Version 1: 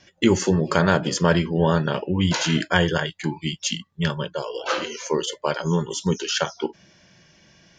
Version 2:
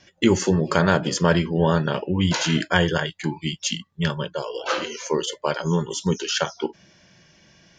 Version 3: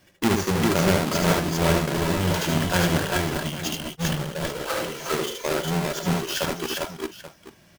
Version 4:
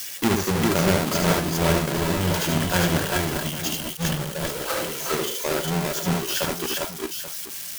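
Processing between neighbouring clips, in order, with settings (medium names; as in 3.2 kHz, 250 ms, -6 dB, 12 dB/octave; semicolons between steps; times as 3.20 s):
no audible change
square wave that keeps the level; on a send: multi-tap echo 75/363/399/402/833 ms -4/-10/-3/-6/-14.5 dB; on the sum: trim -8.5 dB
zero-crossing glitches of -24.5 dBFS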